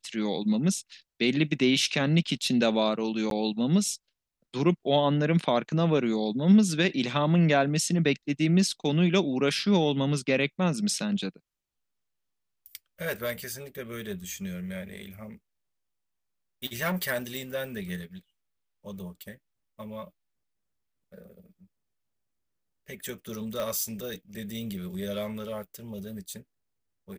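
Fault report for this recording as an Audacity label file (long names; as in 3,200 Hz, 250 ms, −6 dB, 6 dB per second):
3.300000	3.310000	drop-out 12 ms
23.600000	23.600000	click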